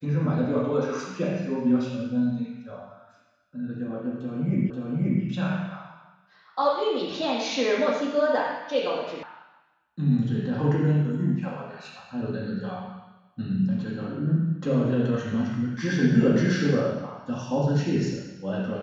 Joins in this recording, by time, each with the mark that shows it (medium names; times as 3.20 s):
4.70 s: repeat of the last 0.53 s
9.23 s: sound stops dead